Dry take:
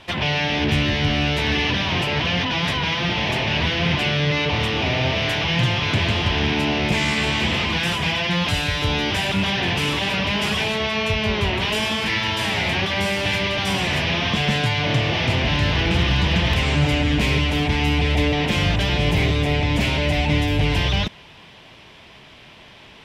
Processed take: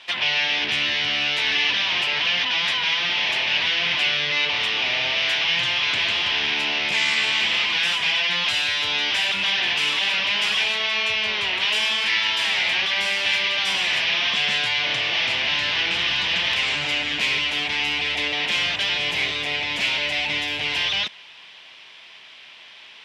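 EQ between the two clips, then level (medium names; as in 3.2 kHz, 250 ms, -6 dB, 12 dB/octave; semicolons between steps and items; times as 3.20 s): band-pass filter 3.3 kHz, Q 0.74; +3.5 dB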